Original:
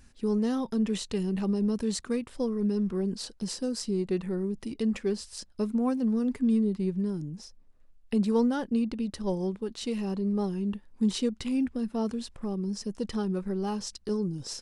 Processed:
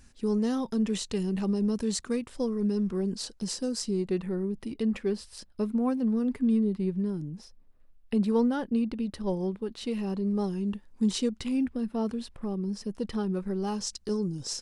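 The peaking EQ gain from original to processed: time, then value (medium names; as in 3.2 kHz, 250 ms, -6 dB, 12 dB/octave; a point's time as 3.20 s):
peaking EQ 6.8 kHz 0.98 oct
3.87 s +3 dB
4.34 s -7 dB
9.90 s -7 dB
10.44 s +3 dB
11.17 s +3 dB
11.83 s -6.5 dB
13.19 s -6.5 dB
13.84 s +5 dB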